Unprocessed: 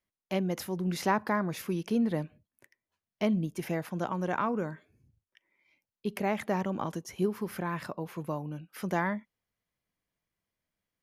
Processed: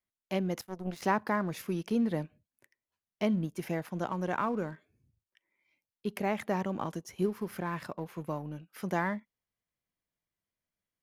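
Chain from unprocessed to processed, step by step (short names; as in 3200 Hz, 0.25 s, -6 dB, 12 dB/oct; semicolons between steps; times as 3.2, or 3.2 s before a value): in parallel at -3 dB: crossover distortion -45 dBFS; 0.61–1.02 on the sum: power-law curve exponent 2; gain -5.5 dB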